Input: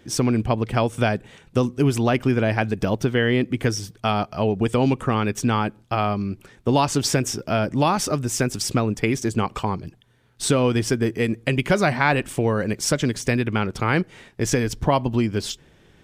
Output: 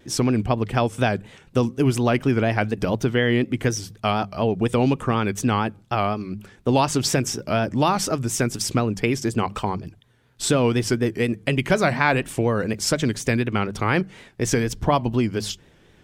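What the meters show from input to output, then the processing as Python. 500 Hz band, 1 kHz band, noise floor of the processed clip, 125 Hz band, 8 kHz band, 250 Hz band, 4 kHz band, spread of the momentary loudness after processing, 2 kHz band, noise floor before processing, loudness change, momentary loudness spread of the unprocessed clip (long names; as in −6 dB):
0.0 dB, 0.0 dB, −55 dBFS, −0.5 dB, 0.0 dB, 0.0 dB, 0.0 dB, 6 LU, 0.0 dB, −55 dBFS, 0.0 dB, 6 LU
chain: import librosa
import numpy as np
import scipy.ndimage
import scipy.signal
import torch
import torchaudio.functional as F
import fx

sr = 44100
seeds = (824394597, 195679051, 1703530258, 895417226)

y = fx.hum_notches(x, sr, base_hz=50, count=4)
y = fx.vibrato(y, sr, rate_hz=4.1, depth_cents=88.0)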